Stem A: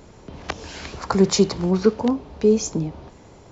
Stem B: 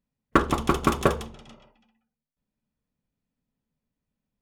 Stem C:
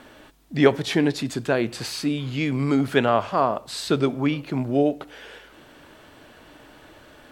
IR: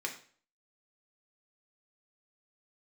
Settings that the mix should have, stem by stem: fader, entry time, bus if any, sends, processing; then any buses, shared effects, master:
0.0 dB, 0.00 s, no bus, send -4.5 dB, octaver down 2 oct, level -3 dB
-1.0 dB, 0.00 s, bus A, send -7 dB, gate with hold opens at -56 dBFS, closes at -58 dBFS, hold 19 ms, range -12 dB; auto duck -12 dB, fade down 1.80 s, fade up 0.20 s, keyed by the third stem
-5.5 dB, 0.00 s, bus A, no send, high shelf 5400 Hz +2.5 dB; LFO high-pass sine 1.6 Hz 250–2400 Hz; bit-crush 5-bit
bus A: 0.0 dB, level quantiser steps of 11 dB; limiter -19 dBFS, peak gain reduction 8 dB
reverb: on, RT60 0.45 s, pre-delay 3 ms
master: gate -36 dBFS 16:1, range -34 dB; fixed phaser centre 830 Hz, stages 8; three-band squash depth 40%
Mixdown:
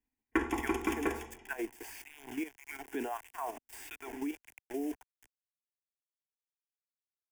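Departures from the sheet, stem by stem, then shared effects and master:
stem A: muted; stem C -5.5 dB -> -12.5 dB; master: missing gate -36 dBFS 16:1, range -34 dB

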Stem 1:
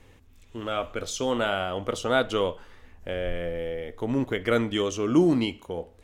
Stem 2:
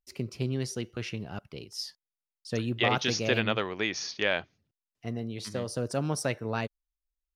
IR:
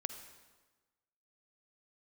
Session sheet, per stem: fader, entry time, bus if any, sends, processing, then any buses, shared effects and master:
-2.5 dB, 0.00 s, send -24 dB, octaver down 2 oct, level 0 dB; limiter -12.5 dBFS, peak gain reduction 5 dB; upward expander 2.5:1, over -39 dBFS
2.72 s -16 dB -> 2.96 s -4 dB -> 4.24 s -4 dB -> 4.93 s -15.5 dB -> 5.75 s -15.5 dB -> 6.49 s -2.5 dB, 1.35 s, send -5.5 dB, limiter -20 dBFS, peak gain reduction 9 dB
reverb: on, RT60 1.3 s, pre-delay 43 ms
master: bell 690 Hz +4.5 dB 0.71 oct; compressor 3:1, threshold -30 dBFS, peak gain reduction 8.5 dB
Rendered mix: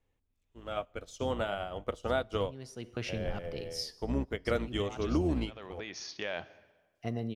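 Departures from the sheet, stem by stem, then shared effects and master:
stem 1 -2.5 dB -> +5.0 dB; stem 2: entry 1.35 s -> 2.00 s

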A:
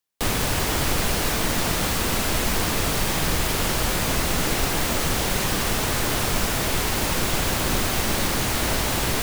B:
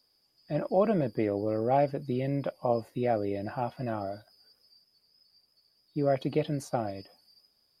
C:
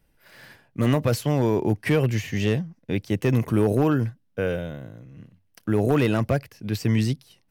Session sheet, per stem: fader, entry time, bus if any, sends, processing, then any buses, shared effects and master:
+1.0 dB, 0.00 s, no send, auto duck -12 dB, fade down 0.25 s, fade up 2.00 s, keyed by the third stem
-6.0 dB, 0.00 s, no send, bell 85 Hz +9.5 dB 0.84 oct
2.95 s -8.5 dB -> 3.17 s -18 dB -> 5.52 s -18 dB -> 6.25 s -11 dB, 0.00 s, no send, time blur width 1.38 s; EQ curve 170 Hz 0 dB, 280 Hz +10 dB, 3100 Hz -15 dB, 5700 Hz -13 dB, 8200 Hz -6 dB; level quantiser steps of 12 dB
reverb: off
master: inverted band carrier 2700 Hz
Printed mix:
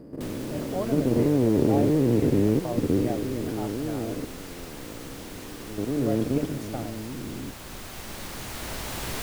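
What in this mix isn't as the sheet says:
stem A +1.0 dB -> -6.5 dB; stem C -8.5 dB -> +3.0 dB; master: missing inverted band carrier 2700 Hz

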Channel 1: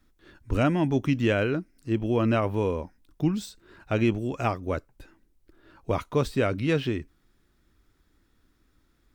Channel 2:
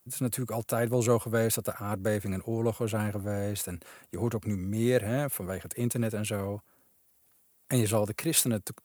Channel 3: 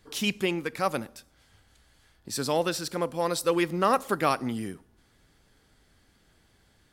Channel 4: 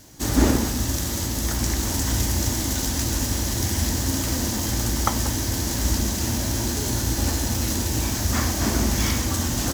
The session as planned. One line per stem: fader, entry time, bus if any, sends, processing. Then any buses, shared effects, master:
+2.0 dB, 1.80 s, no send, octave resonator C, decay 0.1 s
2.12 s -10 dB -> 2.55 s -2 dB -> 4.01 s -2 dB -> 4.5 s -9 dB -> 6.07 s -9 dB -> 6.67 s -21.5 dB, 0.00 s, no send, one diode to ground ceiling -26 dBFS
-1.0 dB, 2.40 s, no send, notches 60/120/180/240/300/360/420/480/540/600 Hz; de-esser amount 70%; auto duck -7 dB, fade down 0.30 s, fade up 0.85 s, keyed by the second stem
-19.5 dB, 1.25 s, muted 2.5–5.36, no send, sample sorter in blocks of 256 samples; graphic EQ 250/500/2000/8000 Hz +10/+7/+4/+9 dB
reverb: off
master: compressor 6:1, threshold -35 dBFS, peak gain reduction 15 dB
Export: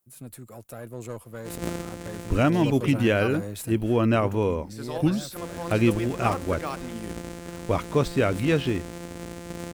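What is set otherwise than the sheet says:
stem 1: missing octave resonator C, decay 0.1 s; master: missing compressor 6:1, threshold -35 dBFS, peak gain reduction 15 dB

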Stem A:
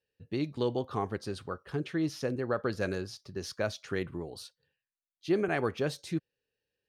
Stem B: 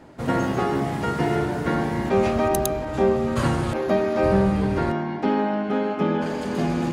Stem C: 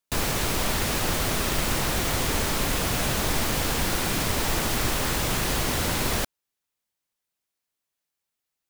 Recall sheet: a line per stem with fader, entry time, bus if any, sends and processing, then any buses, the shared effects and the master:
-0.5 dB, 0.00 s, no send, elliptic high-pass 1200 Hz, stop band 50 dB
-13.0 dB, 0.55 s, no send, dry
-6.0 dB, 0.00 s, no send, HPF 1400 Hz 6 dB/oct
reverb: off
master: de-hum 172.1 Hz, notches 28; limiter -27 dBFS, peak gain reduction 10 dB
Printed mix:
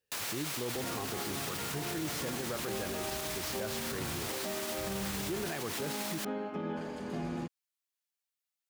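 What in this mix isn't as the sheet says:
stem A: missing elliptic high-pass 1200 Hz, stop band 50 dB; master: missing de-hum 172.1 Hz, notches 28

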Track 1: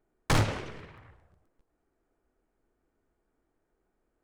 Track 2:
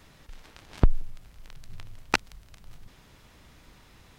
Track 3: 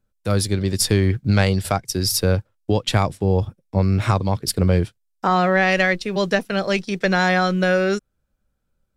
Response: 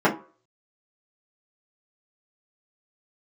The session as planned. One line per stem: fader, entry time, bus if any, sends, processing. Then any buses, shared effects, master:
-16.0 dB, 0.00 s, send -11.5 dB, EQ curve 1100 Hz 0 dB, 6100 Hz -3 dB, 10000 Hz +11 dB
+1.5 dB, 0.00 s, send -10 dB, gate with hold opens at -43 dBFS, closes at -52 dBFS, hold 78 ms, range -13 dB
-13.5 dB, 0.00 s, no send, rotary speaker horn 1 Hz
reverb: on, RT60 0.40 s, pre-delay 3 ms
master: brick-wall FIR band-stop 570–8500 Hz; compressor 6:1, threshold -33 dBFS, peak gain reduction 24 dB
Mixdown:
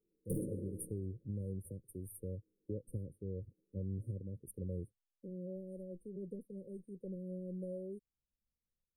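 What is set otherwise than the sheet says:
stem 2: muted; stem 3 -13.5 dB -> -21.0 dB

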